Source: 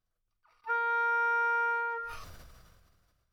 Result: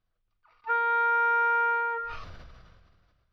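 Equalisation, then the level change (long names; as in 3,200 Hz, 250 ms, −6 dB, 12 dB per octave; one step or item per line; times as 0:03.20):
high-frequency loss of the air 300 metres
parametric band 4,800 Hz +6.5 dB 1.9 octaves
+5.0 dB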